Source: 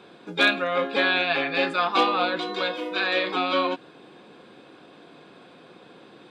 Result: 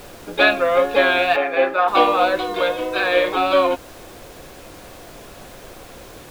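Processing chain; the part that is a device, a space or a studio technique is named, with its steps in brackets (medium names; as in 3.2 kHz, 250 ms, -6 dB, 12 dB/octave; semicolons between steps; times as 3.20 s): horn gramophone (band-pass 250–3400 Hz; peaking EQ 610 Hz +8 dB 0.54 oct; wow and flutter; pink noise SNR 22 dB); 1.36–1.88 s: three-band isolator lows -13 dB, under 260 Hz, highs -13 dB, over 2.6 kHz; trim +4.5 dB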